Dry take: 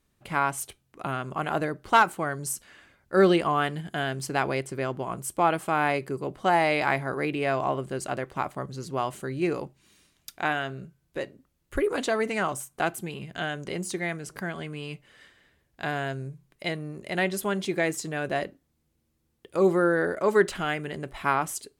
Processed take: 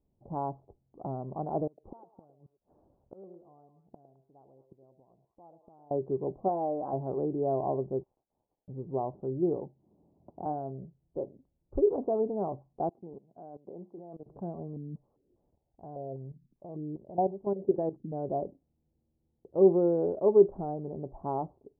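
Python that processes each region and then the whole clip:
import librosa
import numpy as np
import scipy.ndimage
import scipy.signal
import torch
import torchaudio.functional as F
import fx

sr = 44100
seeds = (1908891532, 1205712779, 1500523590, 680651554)

y = fx.chain(x, sr, fx.gate_flip(shuts_db=-27.0, range_db=-28),
    fx.echo_stepped(ms=106, hz=500.0, octaves=1.4, feedback_pct=70, wet_db=-7), at=(1.67, 5.91))
y = fx.chain(y, sr, fx.low_shelf(hz=450.0, db=-6.5),
    fx.notch(hz=850.0, q=7.4),
    fx.comb(ms=3.8, depth=0.37), at=(6.48, 6.93))
y = fx.chain(y, sr, fx.brickwall_highpass(low_hz=2700.0),
    fx.power_curve(exponent=0.7), at=(8.03, 8.68))
y = fx.chain(y, sr, fx.median_filter(points=25),
    fx.highpass(hz=88.0, slope=12),
    fx.band_squash(depth_pct=70), at=(9.56, 10.46))
y = fx.chain(y, sr, fx.highpass(hz=230.0, slope=12),
    fx.level_steps(step_db=20), at=(12.89, 14.26))
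y = fx.chain(y, sr, fx.low_shelf(hz=85.0, db=4.0),
    fx.level_steps(step_db=13),
    fx.filter_held_lowpass(hz=5.0, low_hz=240.0, high_hz=4100.0), at=(14.76, 18.12))
y = scipy.signal.sosfilt(scipy.signal.butter(8, 870.0, 'lowpass', fs=sr, output='sos'), y)
y = fx.dynamic_eq(y, sr, hz=400.0, q=7.1, threshold_db=-41.0, ratio=4.0, max_db=6)
y = y * librosa.db_to_amplitude(-3.0)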